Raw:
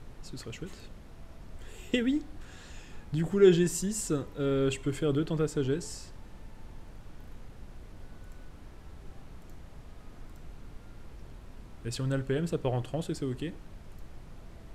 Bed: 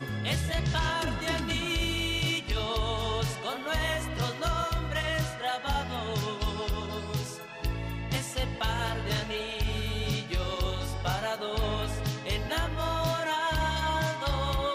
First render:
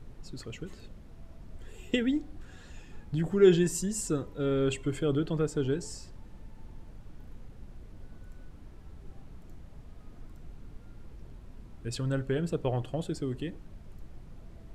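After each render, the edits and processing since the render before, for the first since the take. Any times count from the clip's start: denoiser 6 dB, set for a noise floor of -50 dBFS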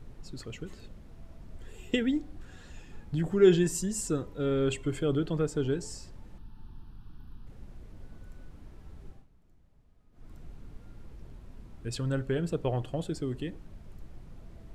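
6.38–7.47 fixed phaser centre 2100 Hz, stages 6; 9.06–10.33 dip -15.5 dB, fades 0.21 s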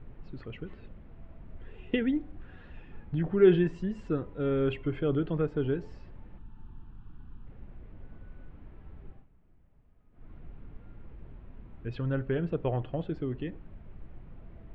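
LPF 2800 Hz 24 dB/oct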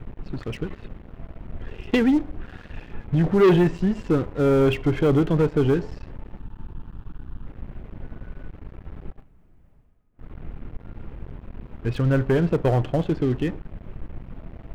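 sample leveller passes 3; reverse; upward compressor, threshold -40 dBFS; reverse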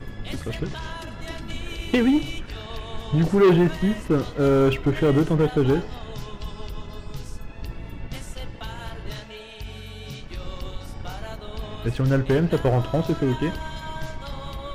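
add bed -6.5 dB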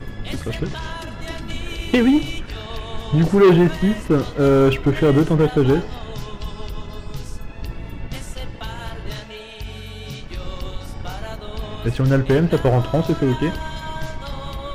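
gain +4 dB

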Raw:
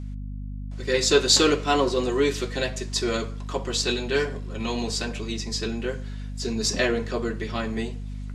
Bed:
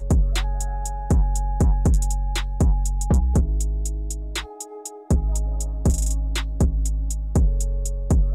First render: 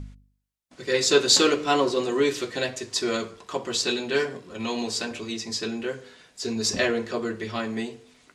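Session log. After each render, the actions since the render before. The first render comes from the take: de-hum 50 Hz, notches 10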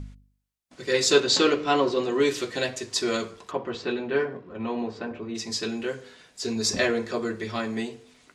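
1.2–2.2 air absorption 100 m; 3.5–5.34 LPF 2100 Hz -> 1300 Hz; 6.57–7.76 notch 2900 Hz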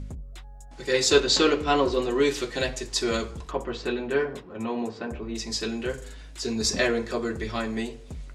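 add bed -20.5 dB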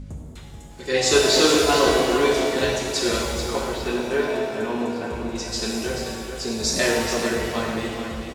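on a send: echo 0.433 s -8 dB; on the sum: shimmer reverb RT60 1.6 s, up +7 st, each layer -8 dB, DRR -1 dB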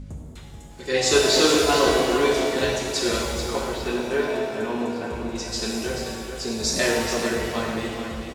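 gain -1 dB

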